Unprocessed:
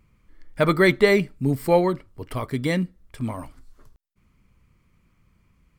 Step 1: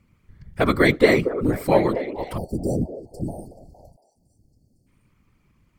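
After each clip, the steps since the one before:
echo through a band-pass that steps 231 ms, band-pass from 450 Hz, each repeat 0.7 octaves, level −8 dB
time-frequency box erased 0:02.37–0:04.87, 810–4,300 Hz
random phases in short frames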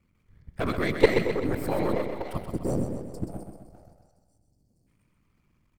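gain on one half-wave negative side −7 dB
output level in coarse steps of 14 dB
repeating echo 129 ms, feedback 50%, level −7 dB
level +1.5 dB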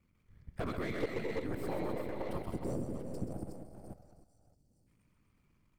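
delay that plays each chunk backwards 303 ms, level −7 dB
downward compressor 3 to 1, threshold −30 dBFS, peak gain reduction 14.5 dB
slew-rate limiting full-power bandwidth 31 Hz
level −4 dB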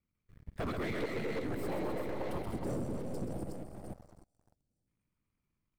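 leveller curve on the samples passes 3
level −7 dB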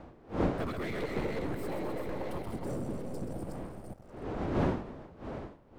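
wind on the microphone 480 Hz −38 dBFS

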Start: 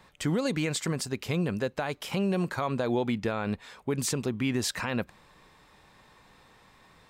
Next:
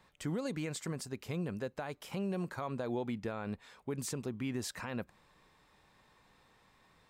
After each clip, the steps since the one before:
dynamic equaliser 3,300 Hz, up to −4 dB, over −47 dBFS, Q 0.79
level −8.5 dB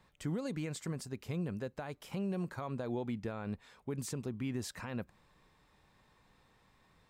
low-shelf EQ 220 Hz +6 dB
level −3 dB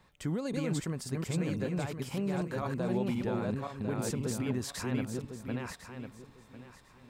feedback delay that plays each chunk backwards 525 ms, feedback 44%, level −1 dB
level +3 dB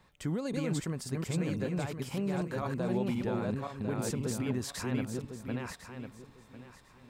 no processing that can be heard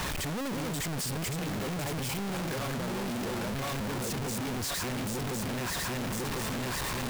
sign of each sample alone
level +1.5 dB

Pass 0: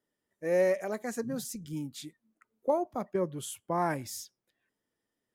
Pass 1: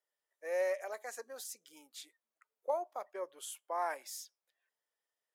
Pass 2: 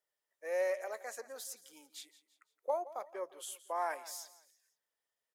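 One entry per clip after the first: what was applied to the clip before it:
high-pass filter 540 Hz 24 dB per octave; level −4.5 dB
repeating echo 169 ms, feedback 39%, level −17 dB

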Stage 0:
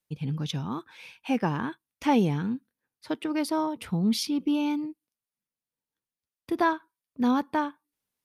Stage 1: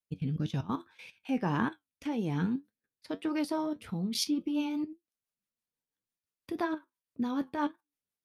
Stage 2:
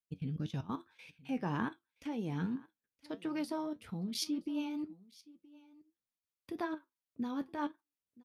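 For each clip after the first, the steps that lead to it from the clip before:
output level in coarse steps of 16 dB; rotating-speaker cabinet horn 1.1 Hz, later 6 Hz, at 0:03.58; flanger 1.8 Hz, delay 8.6 ms, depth 3.4 ms, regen +60%; level +7.5 dB
single-tap delay 972 ms −22.5 dB; level −5.5 dB

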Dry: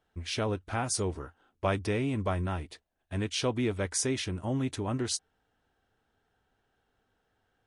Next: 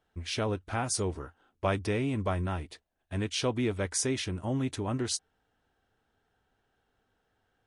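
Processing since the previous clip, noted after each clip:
no processing that can be heard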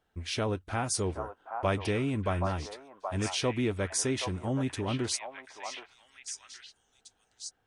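echo through a band-pass that steps 774 ms, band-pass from 870 Hz, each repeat 1.4 octaves, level −1.5 dB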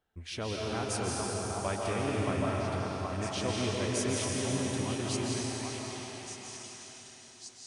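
comb and all-pass reverb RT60 4.5 s, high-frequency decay 1×, pre-delay 110 ms, DRR −4 dB
level −6 dB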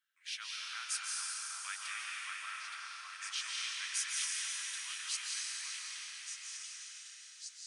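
Butterworth high-pass 1,400 Hz 36 dB per octave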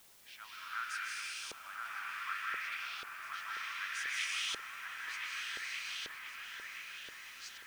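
auto-filter band-pass saw up 0.66 Hz 440–3,300 Hz
background noise white −70 dBFS
delay with a low-pass on its return 1,026 ms, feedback 49%, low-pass 2,900 Hz, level −4 dB
level +8.5 dB

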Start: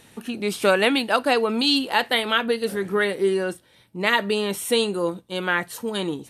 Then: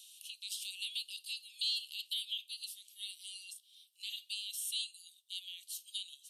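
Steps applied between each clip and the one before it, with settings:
brickwall limiter −11.5 dBFS, peak gain reduction 7 dB
Butterworth high-pass 2,900 Hz 72 dB per octave
multiband upward and downward compressor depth 40%
level −8 dB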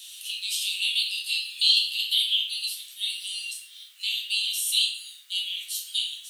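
bit-depth reduction 12 bits, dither triangular
high-pass with resonance 2,000 Hz, resonance Q 1.7
rectangular room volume 120 cubic metres, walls mixed, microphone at 1.2 metres
level +8.5 dB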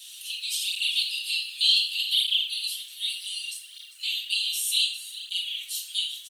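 single-tap delay 400 ms −15.5 dB
through-zero flanger with one copy inverted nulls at 0.66 Hz, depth 6.8 ms
level +2.5 dB

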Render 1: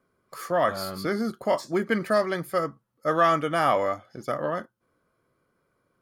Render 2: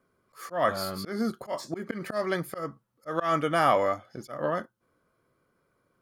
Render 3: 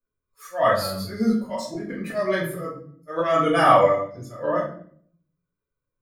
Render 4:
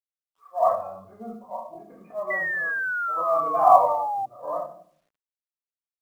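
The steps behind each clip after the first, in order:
volume swells 168 ms
spectral dynamics exaggerated over time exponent 1.5; rectangular room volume 75 cubic metres, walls mixed, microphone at 1.8 metres
formant resonators in series a; sound drawn into the spectrogram fall, 0:02.30–0:04.26, 770–2,000 Hz −35 dBFS; log-companded quantiser 8 bits; level +8 dB

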